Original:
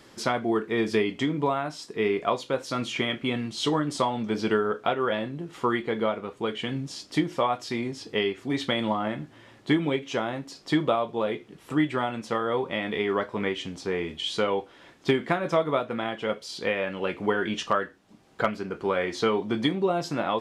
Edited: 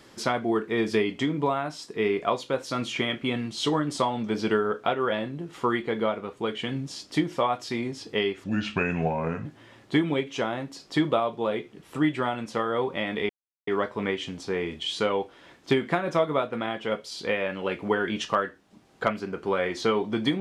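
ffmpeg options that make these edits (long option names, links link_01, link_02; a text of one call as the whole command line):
ffmpeg -i in.wav -filter_complex "[0:a]asplit=4[link_01][link_02][link_03][link_04];[link_01]atrim=end=8.444[link_05];[link_02]atrim=start=8.44:end=9.21,asetpts=PTS-STARTPTS,asetrate=33516,aresample=44100,atrim=end_sample=44680,asetpts=PTS-STARTPTS[link_06];[link_03]atrim=start=9.206:end=13.05,asetpts=PTS-STARTPTS,afade=type=out:start_time=3.84:duration=0.004:curve=hsin,apad=pad_dur=0.38[link_07];[link_04]atrim=start=13.05,asetpts=PTS-STARTPTS,afade=type=in:duration=0.004:curve=hsin[link_08];[link_05][link_06]acrossfade=duration=0.004:curve1=hsin:curve2=hsin[link_09];[link_07][link_08]concat=n=2:v=0:a=1[link_10];[link_09][link_10]acrossfade=duration=0.004:curve1=hsin:curve2=hsin" out.wav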